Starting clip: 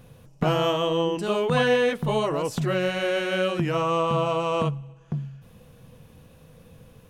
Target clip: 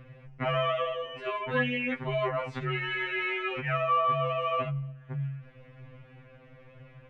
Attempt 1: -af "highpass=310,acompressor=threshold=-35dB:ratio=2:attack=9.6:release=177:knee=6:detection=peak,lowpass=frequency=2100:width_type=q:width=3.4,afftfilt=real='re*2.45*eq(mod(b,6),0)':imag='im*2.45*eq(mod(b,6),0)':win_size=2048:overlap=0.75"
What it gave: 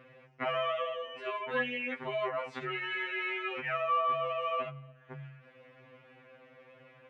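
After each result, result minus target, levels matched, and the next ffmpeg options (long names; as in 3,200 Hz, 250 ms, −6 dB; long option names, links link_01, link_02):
250 Hz band −5.0 dB; downward compressor: peak gain reduction +4 dB
-af "acompressor=threshold=-35dB:ratio=2:attack=9.6:release=177:knee=6:detection=peak,lowpass=frequency=2100:width_type=q:width=3.4,afftfilt=real='re*2.45*eq(mod(b,6),0)':imag='im*2.45*eq(mod(b,6),0)':win_size=2048:overlap=0.75"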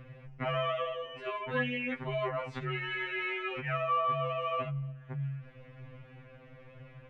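downward compressor: peak gain reduction +4 dB
-af "acompressor=threshold=-27dB:ratio=2:attack=9.6:release=177:knee=6:detection=peak,lowpass=frequency=2100:width_type=q:width=3.4,afftfilt=real='re*2.45*eq(mod(b,6),0)':imag='im*2.45*eq(mod(b,6),0)':win_size=2048:overlap=0.75"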